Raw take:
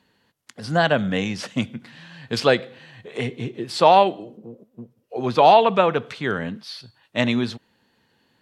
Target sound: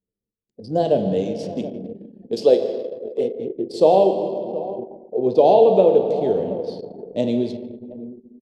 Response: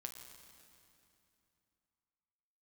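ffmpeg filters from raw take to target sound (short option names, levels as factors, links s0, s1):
-filter_complex "[0:a]asettb=1/sr,asplit=3[s0][s1][s2];[s0]atrim=end=1.134[s3];[s1]atrim=start=1.13:end=3.5,asetpts=PTS-STARTPTS,afade=t=in:d=0.004:c=qsin,afade=t=out:st=2.366:d=0.004:c=qsin,equalizer=f=100:t=o:w=1.8:g=-11.5[s4];[s2]atrim=start=3.496[s5];[s3][s4]acrossfade=d=0.004:c1=hsin:c2=qsin[s6];[s6][s5]acrossfade=d=0.004:c1=qsin:c2=hsin,asplit=2[s7][s8];[s8]adelay=724,lowpass=f=1000:p=1,volume=0.2,asplit=2[s9][s10];[s10]adelay=724,lowpass=f=1000:p=1,volume=0.21[s11];[s7][s9][s11]amix=inputs=3:normalize=0[s12];[1:a]atrim=start_sample=2205[s13];[s12][s13]afir=irnorm=-1:irlink=0,anlmdn=2.51,firequalizer=gain_entry='entry(130,0);entry(440,13);entry(1300,-24);entry(3100,-7);entry(4700,-3)':delay=0.05:min_phase=1"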